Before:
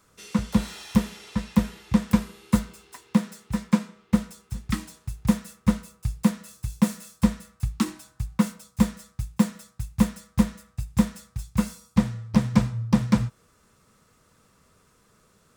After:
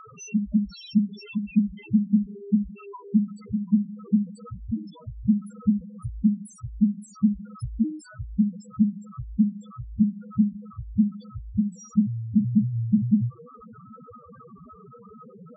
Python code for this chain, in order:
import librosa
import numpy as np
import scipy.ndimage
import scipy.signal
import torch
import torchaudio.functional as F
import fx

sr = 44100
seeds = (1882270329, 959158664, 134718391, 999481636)

p1 = x + 0.5 * 10.0 ** (-32.0 / 20.0) * np.sign(x)
p2 = fx.low_shelf(p1, sr, hz=92.0, db=-10.5)
p3 = fx.quant_dither(p2, sr, seeds[0], bits=6, dither='triangular')
p4 = p2 + (p3 * librosa.db_to_amplitude(-11.5))
p5 = fx.hum_notches(p4, sr, base_hz=50, count=4)
p6 = fx.spec_topn(p5, sr, count=2)
y = p6 * librosa.db_to_amplitude(3.0)